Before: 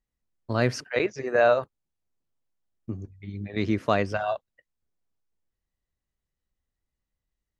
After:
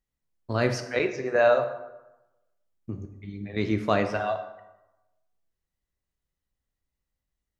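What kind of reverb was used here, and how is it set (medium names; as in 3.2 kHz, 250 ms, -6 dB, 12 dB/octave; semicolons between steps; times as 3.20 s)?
plate-style reverb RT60 1 s, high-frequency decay 0.6×, DRR 6 dB; trim -1 dB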